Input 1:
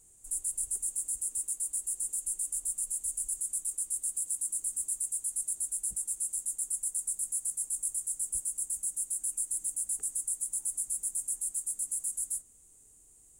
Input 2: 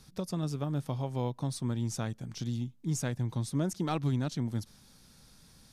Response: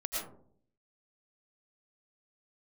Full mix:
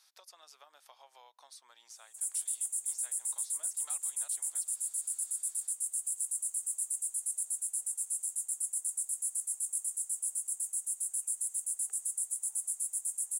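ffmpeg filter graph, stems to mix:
-filter_complex "[0:a]adelay=1900,volume=-1.5dB[link_01];[1:a]highpass=frequency=1300:poles=1,acompressor=threshold=-45dB:ratio=6,volume=-4dB[link_02];[link_01][link_02]amix=inputs=2:normalize=0,highpass=frequency=650:width=0.5412,highpass=frequency=650:width=1.3066"

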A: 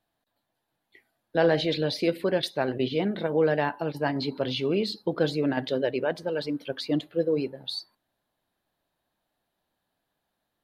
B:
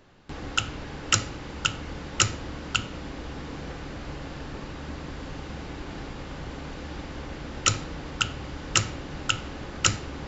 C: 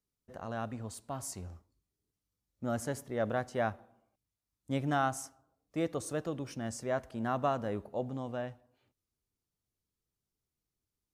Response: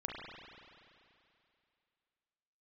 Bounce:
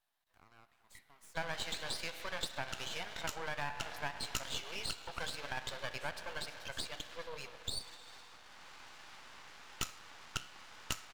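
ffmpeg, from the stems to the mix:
-filter_complex "[0:a]volume=-1dB,asplit=2[link_01][link_02];[link_02]volume=-5.5dB[link_03];[1:a]flanger=delay=9.7:depth=6.5:regen=-73:speed=0.68:shape=sinusoidal,adelay=2150,volume=-1dB[link_04];[2:a]highpass=680,acompressor=threshold=-43dB:ratio=4,volume=-11dB,asplit=3[link_05][link_06][link_07];[link_06]volume=-9.5dB[link_08];[link_07]apad=whole_len=547873[link_09];[link_04][link_09]sidechaincompress=threshold=-58dB:ratio=8:attack=40:release=400[link_10];[3:a]atrim=start_sample=2205[link_11];[link_03][link_08]amix=inputs=2:normalize=0[link_12];[link_12][link_11]afir=irnorm=-1:irlink=0[link_13];[link_01][link_10][link_05][link_13]amix=inputs=4:normalize=0,highpass=frequency=840:width=0.5412,highpass=frequency=840:width=1.3066,aeval=exprs='max(val(0),0)':channel_layout=same,acompressor=threshold=-35dB:ratio=3"

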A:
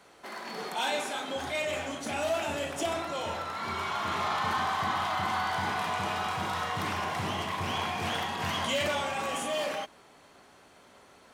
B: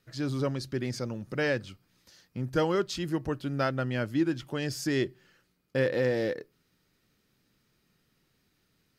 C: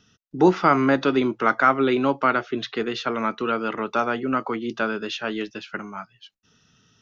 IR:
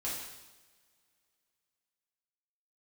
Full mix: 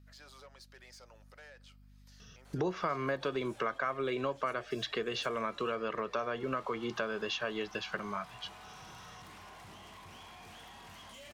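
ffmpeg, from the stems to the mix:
-filter_complex "[0:a]highshelf=frequency=4300:gain=6.5,acompressor=threshold=-36dB:ratio=2.5,asoftclip=type=tanh:threshold=-35dB,adelay=2450,volume=-4.5dB[link_01];[1:a]highpass=frequency=630:width=0.5412,highpass=frequency=630:width=1.3066,acompressor=threshold=-38dB:ratio=6,asoftclip=type=tanh:threshold=-37.5dB,volume=-6dB,asplit=2[link_02][link_03];[2:a]aecho=1:1:1.8:0.59,acompressor=threshold=-36dB:ratio=2,adelay=2200,volume=3dB[link_04];[link_03]apad=whole_len=607773[link_05];[link_01][link_05]sidechaincompress=threshold=-58dB:ratio=8:attack=28:release=226[link_06];[link_06][link_02]amix=inputs=2:normalize=0,aeval=exprs='val(0)+0.00141*(sin(2*PI*50*n/s)+sin(2*PI*2*50*n/s)/2+sin(2*PI*3*50*n/s)/3+sin(2*PI*4*50*n/s)/4+sin(2*PI*5*50*n/s)/5)':channel_layout=same,alimiter=level_in=22.5dB:limit=-24dB:level=0:latency=1:release=109,volume=-22.5dB,volume=0dB[link_07];[link_04][link_07]amix=inputs=2:normalize=0,acompressor=threshold=-35dB:ratio=2"

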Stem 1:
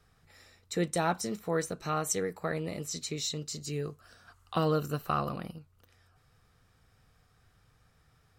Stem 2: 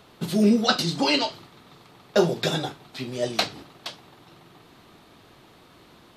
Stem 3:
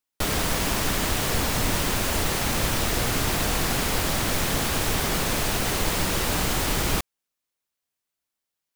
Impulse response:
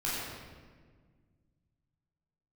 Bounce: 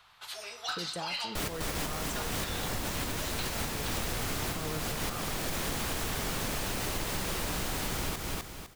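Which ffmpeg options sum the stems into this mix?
-filter_complex "[0:a]volume=-8dB,asplit=2[link_01][link_02];[1:a]highpass=frequency=920:width=0.5412,highpass=frequency=920:width=1.3066,asoftclip=type=tanh:threshold=-19dB,highshelf=frequency=5100:gain=-6,volume=-3dB,asplit=2[link_03][link_04];[link_04]volume=-18dB[link_05];[2:a]acontrast=78,adelay=1150,volume=-9dB,asplit=2[link_06][link_07];[link_07]volume=-7dB[link_08];[link_02]apad=whole_len=436995[link_09];[link_06][link_09]sidechaincompress=threshold=-49dB:ratio=4:attack=8.2:release=105[link_10];[link_01][link_03]amix=inputs=2:normalize=0,alimiter=level_in=3.5dB:limit=-24dB:level=0:latency=1,volume=-3.5dB,volume=0dB[link_11];[3:a]atrim=start_sample=2205[link_12];[link_05][link_12]afir=irnorm=-1:irlink=0[link_13];[link_08]aecho=0:1:253|506|759|1012:1|0.29|0.0841|0.0244[link_14];[link_10][link_11][link_13][link_14]amix=inputs=4:normalize=0,acompressor=threshold=-30dB:ratio=6"

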